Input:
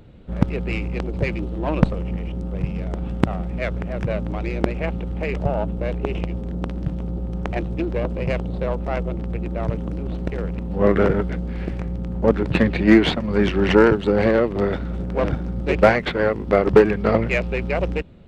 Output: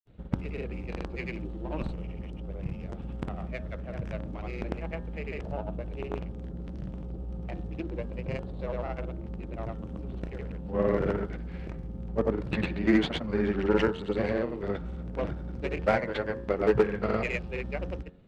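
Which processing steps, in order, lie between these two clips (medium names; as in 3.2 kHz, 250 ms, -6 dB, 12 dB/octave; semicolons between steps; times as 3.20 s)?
granulator, pitch spread up and down by 0 st; de-hum 90.21 Hz, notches 20; trim -9 dB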